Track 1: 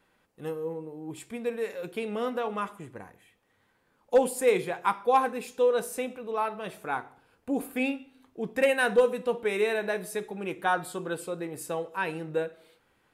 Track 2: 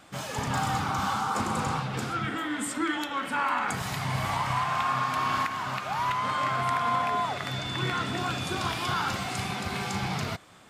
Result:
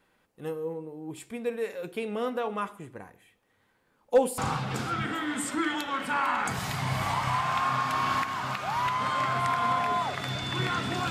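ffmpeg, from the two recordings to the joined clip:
-filter_complex "[0:a]apad=whole_dur=11.1,atrim=end=11.1,atrim=end=4.382[a];[1:a]atrim=start=1.608:end=8.33[b];[a][b]acrossfade=d=0.004:c1=hsin:c2=hsin"

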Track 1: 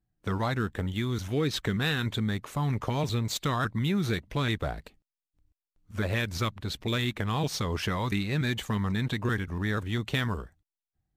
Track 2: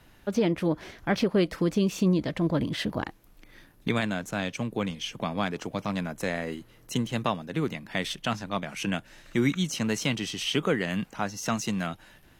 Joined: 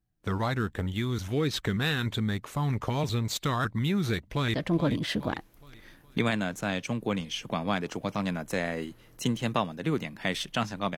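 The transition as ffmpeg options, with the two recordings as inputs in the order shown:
-filter_complex "[0:a]apad=whole_dur=10.97,atrim=end=10.97,atrim=end=4.542[a];[1:a]atrim=start=2.238:end=8.67[b];[a][b]acrossfade=d=0.004:c1=hsin:c2=hsin,asplit=2[c][d];[d]afade=t=in:st=4.27:d=0.01,afade=t=out:st=4.54:d=0.01,aecho=0:1:420|840|1260|1680|2100:0.266073|0.119733|0.0538797|0.0242459|0.0109106[e];[c][e]amix=inputs=2:normalize=0"

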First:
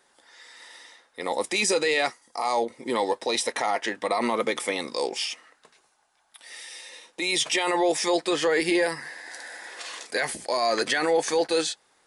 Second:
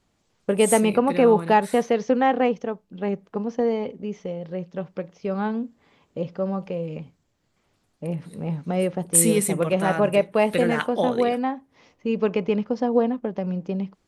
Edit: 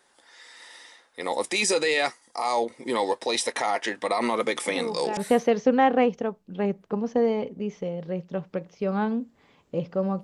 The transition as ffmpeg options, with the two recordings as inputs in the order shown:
-filter_complex "[1:a]asplit=2[a][b];[0:a]apad=whole_dur=10.23,atrim=end=10.23,atrim=end=5.172[c];[b]atrim=start=1.598:end=6.66[d];[a]atrim=start=1.09:end=1.6,asetpts=PTS-STARTPTS,volume=-14.5dB,afade=t=in:d=0.004:c=hsin,afade=t=out:st=0.506:d=0.004:c=hsin,adelay=4660[e];[c][d]acrossfade=d=0.004:c1=hsin:c2=hsin[f];[f][e]amix=inputs=2:normalize=0"

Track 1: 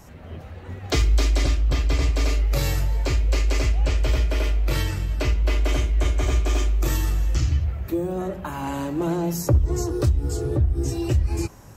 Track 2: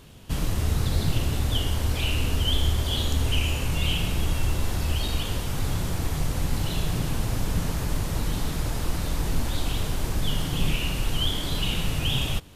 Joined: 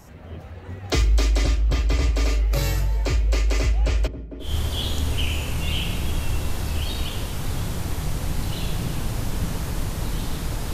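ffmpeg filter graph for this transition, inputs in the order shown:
-filter_complex "[0:a]asplit=3[a][b][c];[a]afade=t=out:st=4.06:d=0.02[d];[b]bandpass=f=220:t=q:w=1.7:csg=0,afade=t=in:st=4.06:d=0.02,afade=t=out:st=4.57:d=0.02[e];[c]afade=t=in:st=4.57:d=0.02[f];[d][e][f]amix=inputs=3:normalize=0,apad=whole_dur=10.73,atrim=end=10.73,atrim=end=4.57,asetpts=PTS-STARTPTS[g];[1:a]atrim=start=2.53:end=8.87,asetpts=PTS-STARTPTS[h];[g][h]acrossfade=d=0.18:c1=tri:c2=tri"

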